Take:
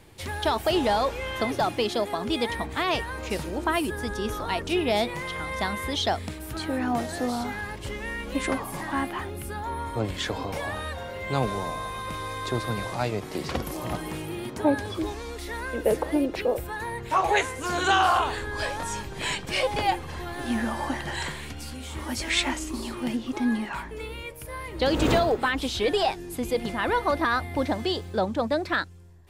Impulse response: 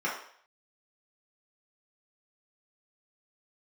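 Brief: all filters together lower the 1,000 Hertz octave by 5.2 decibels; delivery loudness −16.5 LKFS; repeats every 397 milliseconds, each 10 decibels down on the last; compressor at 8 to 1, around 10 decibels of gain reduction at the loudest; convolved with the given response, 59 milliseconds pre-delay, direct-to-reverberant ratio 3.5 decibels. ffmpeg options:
-filter_complex "[0:a]equalizer=frequency=1000:width_type=o:gain=-7,acompressor=threshold=-29dB:ratio=8,aecho=1:1:397|794|1191|1588:0.316|0.101|0.0324|0.0104,asplit=2[link_01][link_02];[1:a]atrim=start_sample=2205,adelay=59[link_03];[link_02][link_03]afir=irnorm=-1:irlink=0,volume=-13dB[link_04];[link_01][link_04]amix=inputs=2:normalize=0,volume=16dB"

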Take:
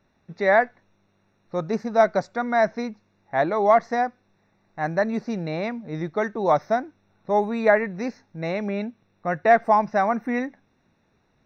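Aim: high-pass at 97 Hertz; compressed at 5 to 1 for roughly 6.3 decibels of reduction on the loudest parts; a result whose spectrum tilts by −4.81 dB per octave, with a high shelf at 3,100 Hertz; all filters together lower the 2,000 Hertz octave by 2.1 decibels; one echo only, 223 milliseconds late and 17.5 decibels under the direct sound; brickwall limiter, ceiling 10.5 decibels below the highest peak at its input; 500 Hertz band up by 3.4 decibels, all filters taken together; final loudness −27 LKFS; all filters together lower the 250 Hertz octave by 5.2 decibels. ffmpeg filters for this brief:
ffmpeg -i in.wav -af "highpass=97,equalizer=frequency=250:width_type=o:gain=-8,equalizer=frequency=500:width_type=o:gain=6.5,equalizer=frequency=2000:width_type=o:gain=-4,highshelf=frequency=3100:gain=4,acompressor=threshold=-16dB:ratio=5,alimiter=limit=-20dB:level=0:latency=1,aecho=1:1:223:0.133,volume=3dB" out.wav

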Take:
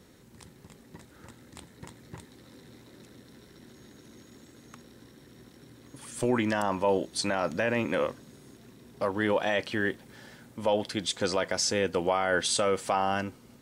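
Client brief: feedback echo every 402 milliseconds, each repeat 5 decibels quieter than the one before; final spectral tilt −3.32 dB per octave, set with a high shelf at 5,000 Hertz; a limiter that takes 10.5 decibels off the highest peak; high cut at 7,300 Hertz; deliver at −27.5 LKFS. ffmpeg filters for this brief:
ffmpeg -i in.wav -af "lowpass=7300,highshelf=frequency=5000:gain=8,alimiter=limit=-23.5dB:level=0:latency=1,aecho=1:1:402|804|1206|1608|2010|2412|2814:0.562|0.315|0.176|0.0988|0.0553|0.031|0.0173,volume=6dB" out.wav

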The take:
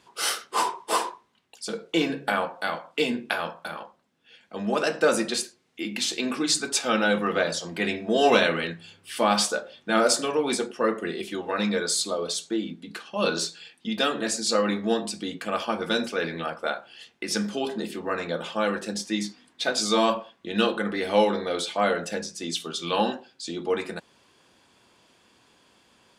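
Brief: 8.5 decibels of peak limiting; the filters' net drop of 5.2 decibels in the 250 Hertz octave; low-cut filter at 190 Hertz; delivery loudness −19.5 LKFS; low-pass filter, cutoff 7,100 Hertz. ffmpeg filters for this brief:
ffmpeg -i in.wav -af "highpass=190,lowpass=7100,equalizer=frequency=250:width_type=o:gain=-5,volume=9.5dB,alimiter=limit=-5.5dB:level=0:latency=1" out.wav

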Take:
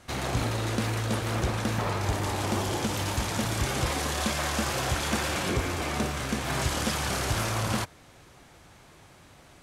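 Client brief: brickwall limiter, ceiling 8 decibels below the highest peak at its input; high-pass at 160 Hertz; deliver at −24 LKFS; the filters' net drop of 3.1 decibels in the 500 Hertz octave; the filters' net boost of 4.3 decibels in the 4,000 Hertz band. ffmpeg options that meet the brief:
ffmpeg -i in.wav -af "highpass=160,equalizer=frequency=500:width_type=o:gain=-4,equalizer=frequency=4000:width_type=o:gain=5.5,volume=6dB,alimiter=limit=-14.5dB:level=0:latency=1" out.wav

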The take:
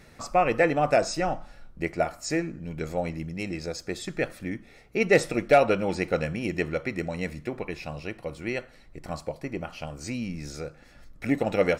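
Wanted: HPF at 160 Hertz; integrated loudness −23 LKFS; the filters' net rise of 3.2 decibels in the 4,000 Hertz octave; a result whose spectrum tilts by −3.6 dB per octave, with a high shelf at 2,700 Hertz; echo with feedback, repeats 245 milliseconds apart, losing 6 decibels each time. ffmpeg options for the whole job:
ffmpeg -i in.wav -af "highpass=160,highshelf=frequency=2700:gain=-4.5,equalizer=frequency=4000:width_type=o:gain=8.5,aecho=1:1:245|490|735|980|1225|1470:0.501|0.251|0.125|0.0626|0.0313|0.0157,volume=4dB" out.wav

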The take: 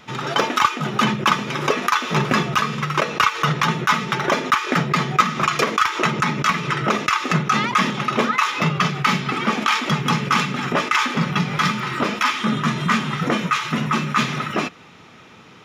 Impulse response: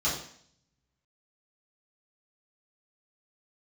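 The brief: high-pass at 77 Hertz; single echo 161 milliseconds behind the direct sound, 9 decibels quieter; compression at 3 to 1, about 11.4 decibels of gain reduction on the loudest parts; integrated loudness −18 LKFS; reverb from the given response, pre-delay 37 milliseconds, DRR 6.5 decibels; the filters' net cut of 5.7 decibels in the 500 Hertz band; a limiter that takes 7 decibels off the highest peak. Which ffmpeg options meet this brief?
-filter_complex "[0:a]highpass=77,equalizer=frequency=500:width_type=o:gain=-7.5,acompressor=threshold=-28dB:ratio=3,alimiter=limit=-18dB:level=0:latency=1,aecho=1:1:161:0.355,asplit=2[link_01][link_02];[1:a]atrim=start_sample=2205,adelay=37[link_03];[link_02][link_03]afir=irnorm=-1:irlink=0,volume=-16dB[link_04];[link_01][link_04]amix=inputs=2:normalize=0,volume=10dB"

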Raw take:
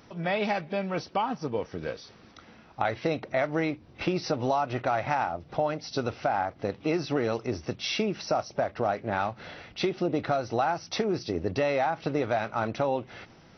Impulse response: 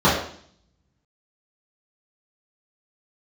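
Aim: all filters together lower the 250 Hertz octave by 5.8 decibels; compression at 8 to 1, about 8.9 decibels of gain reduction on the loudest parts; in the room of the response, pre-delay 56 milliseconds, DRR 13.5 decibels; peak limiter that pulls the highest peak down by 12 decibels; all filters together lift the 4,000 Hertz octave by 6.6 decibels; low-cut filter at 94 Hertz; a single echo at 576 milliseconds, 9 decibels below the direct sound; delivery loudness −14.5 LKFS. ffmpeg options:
-filter_complex "[0:a]highpass=94,equalizer=frequency=250:width_type=o:gain=-8.5,equalizer=frequency=4000:width_type=o:gain=8,acompressor=threshold=-32dB:ratio=8,alimiter=level_in=3.5dB:limit=-24dB:level=0:latency=1,volume=-3.5dB,aecho=1:1:576:0.355,asplit=2[link_01][link_02];[1:a]atrim=start_sample=2205,adelay=56[link_03];[link_02][link_03]afir=irnorm=-1:irlink=0,volume=-36.5dB[link_04];[link_01][link_04]amix=inputs=2:normalize=0,volume=24dB"

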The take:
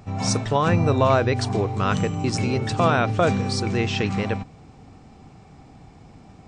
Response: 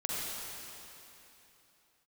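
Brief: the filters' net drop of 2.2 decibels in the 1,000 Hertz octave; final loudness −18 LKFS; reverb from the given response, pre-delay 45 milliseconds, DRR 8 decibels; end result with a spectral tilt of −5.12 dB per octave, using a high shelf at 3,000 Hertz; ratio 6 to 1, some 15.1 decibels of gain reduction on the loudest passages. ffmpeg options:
-filter_complex "[0:a]equalizer=frequency=1000:width_type=o:gain=-3.5,highshelf=frequency=3000:gain=3.5,acompressor=threshold=-32dB:ratio=6,asplit=2[link_01][link_02];[1:a]atrim=start_sample=2205,adelay=45[link_03];[link_02][link_03]afir=irnorm=-1:irlink=0,volume=-14dB[link_04];[link_01][link_04]amix=inputs=2:normalize=0,volume=16.5dB"

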